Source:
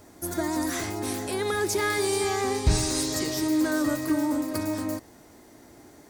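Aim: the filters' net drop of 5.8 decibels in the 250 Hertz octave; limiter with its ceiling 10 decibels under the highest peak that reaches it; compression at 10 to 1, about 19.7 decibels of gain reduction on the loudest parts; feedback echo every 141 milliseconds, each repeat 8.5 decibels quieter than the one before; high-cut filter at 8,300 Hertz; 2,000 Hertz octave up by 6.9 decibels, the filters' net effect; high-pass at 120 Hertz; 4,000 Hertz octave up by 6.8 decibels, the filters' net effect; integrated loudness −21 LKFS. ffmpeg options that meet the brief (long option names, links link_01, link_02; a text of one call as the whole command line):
ffmpeg -i in.wav -af "highpass=120,lowpass=8300,equalizer=frequency=250:width_type=o:gain=-8,equalizer=frequency=2000:width_type=o:gain=7,equalizer=frequency=4000:width_type=o:gain=7,acompressor=threshold=-40dB:ratio=10,alimiter=level_in=14.5dB:limit=-24dB:level=0:latency=1,volume=-14.5dB,aecho=1:1:141|282|423|564:0.376|0.143|0.0543|0.0206,volume=25dB" out.wav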